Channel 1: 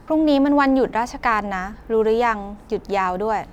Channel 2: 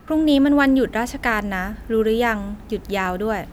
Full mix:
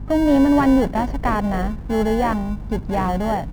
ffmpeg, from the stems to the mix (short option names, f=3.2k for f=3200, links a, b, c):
-filter_complex "[0:a]aemphasis=mode=reproduction:type=bsi,aeval=exprs='val(0)+0.0355*(sin(2*PI*50*n/s)+sin(2*PI*2*50*n/s)/2+sin(2*PI*3*50*n/s)/3+sin(2*PI*4*50*n/s)/4+sin(2*PI*5*50*n/s)/5)':c=same,volume=-2dB[a];[1:a]acrusher=samples=35:mix=1:aa=0.000001,asoftclip=type=tanh:threshold=-17dB,adelay=0.4,volume=-1.5dB[b];[a][b]amix=inputs=2:normalize=0,highshelf=f=2.2k:g=-10"